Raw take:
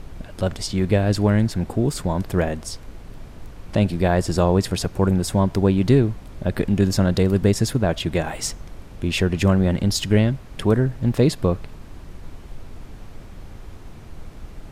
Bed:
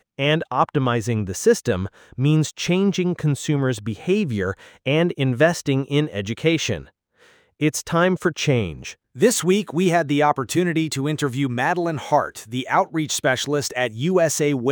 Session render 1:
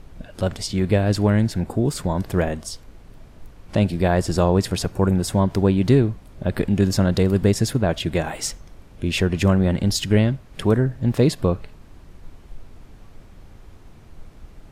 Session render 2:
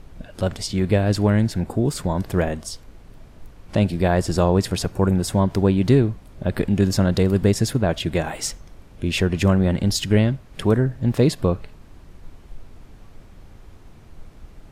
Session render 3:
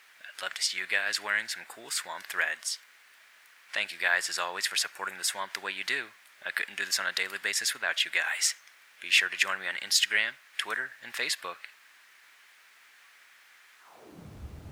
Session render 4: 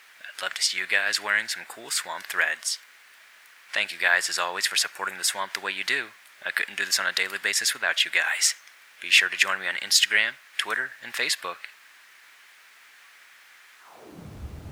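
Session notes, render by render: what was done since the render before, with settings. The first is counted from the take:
noise print and reduce 6 dB
nothing audible
bit-crush 11-bit; high-pass sweep 1800 Hz -> 80 Hz, 13.78–14.36
gain +5 dB

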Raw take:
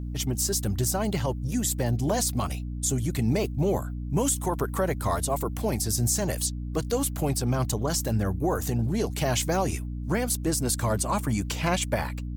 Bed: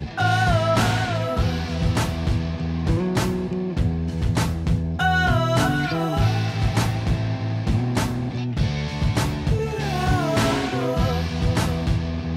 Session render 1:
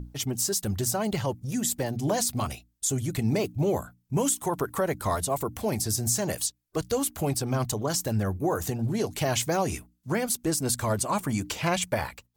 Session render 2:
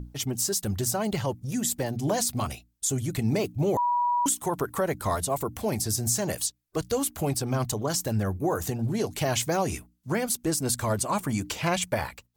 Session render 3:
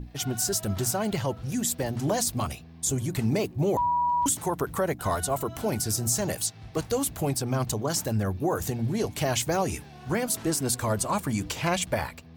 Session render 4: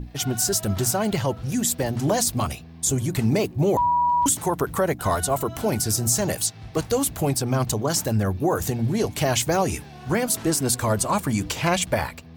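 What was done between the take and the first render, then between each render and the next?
notches 60/120/180/240/300 Hz
3.77–4.26 bleep 969 Hz -21.5 dBFS
add bed -23 dB
gain +4.5 dB

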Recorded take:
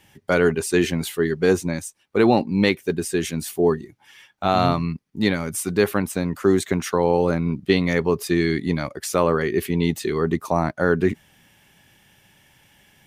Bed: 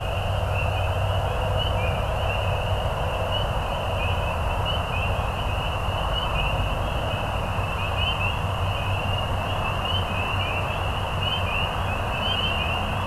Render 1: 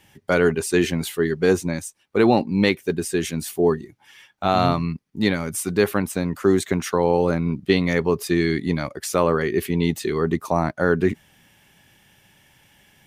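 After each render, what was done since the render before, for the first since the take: nothing audible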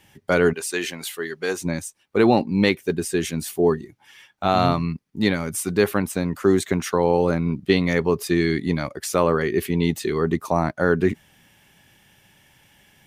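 0.53–1.61 HPF 1000 Hz 6 dB/oct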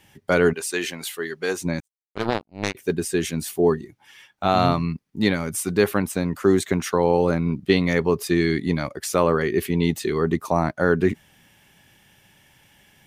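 1.8–2.75 power-law curve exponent 3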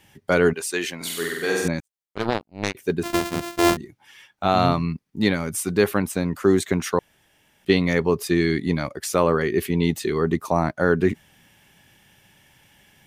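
0.96–1.68 flutter echo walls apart 8.1 m, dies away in 1.3 s; 3.03–3.77 sample sorter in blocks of 128 samples; 6.99–7.65 room tone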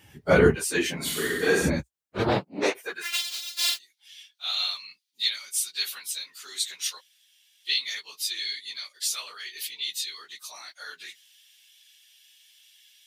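phase scrambler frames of 50 ms; high-pass sweep 61 Hz -> 3800 Hz, 2.21–3.21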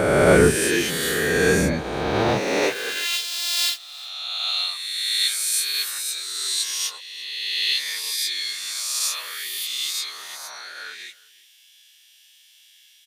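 spectral swells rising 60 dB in 2.11 s; echo 0.352 s -23 dB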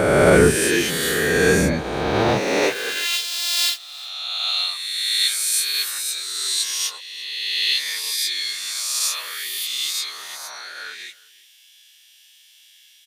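gain +2 dB; limiter -3 dBFS, peak gain reduction 2.5 dB

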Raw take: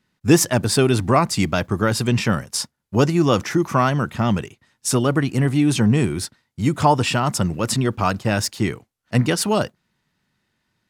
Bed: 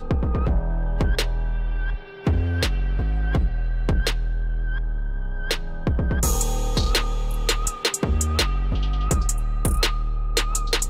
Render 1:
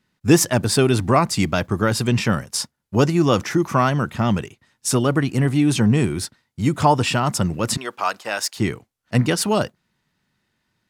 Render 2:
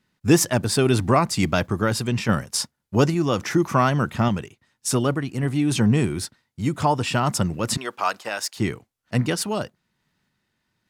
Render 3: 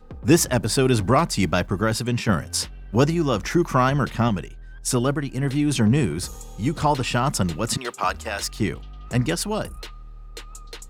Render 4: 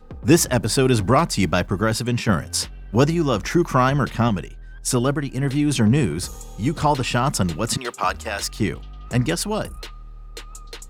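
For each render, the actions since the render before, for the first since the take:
7.77–8.57 HPF 640 Hz
random-step tremolo 3.5 Hz
add bed -16.5 dB
gain +1.5 dB

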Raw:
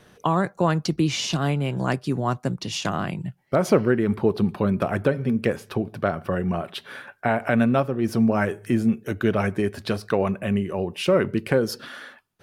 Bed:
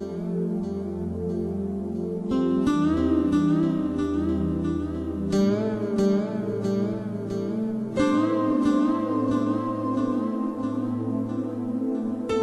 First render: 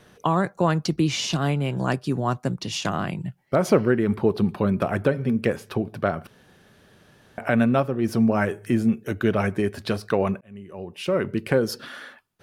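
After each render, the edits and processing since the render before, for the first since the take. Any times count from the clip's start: 1.77–2.35 notch 2100 Hz; 6.27–7.38 room tone; 10.41–11.56 fade in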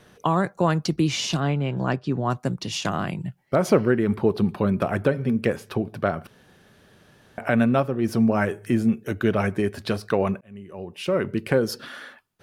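1.4–2.3 air absorption 130 m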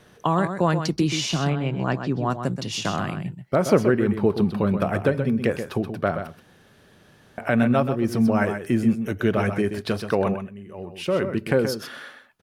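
echo 0.128 s -8.5 dB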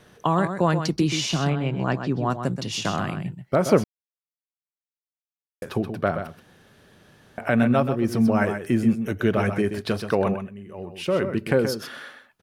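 3.84–5.62 mute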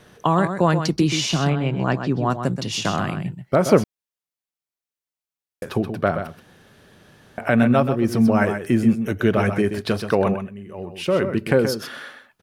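gain +3 dB

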